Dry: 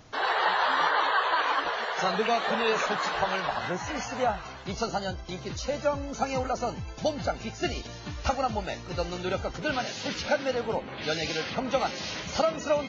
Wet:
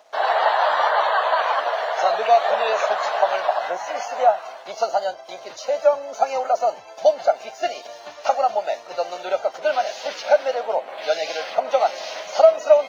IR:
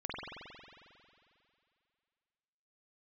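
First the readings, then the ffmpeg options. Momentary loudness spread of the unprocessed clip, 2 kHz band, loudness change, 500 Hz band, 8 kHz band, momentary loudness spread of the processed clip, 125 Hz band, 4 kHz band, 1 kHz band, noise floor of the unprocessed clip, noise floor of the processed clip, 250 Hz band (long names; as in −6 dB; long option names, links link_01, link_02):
9 LU, +2.0 dB, +7.5 dB, +10.5 dB, can't be measured, 10 LU, below −20 dB, +1.0 dB, +8.0 dB, −42 dBFS, −41 dBFS, −12.0 dB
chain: -af "aeval=exprs='sgn(val(0))*max(abs(val(0))-0.00141,0)':channel_layout=same,highpass=frequency=640:width_type=q:width=4.9,volume=1dB"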